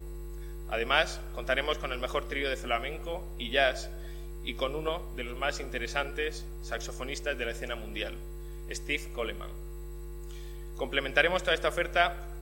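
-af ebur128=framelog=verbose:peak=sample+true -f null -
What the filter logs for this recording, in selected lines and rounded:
Integrated loudness:
  I:         -31.4 LUFS
  Threshold: -42.2 LUFS
Loudness range:
  LRA:         6.1 LU
  Threshold: -53.2 LUFS
  LRA low:   -36.6 LUFS
  LRA high:  -30.5 LUFS
Sample peak:
  Peak:       -8.0 dBFS
True peak:
  Peak:       -8.0 dBFS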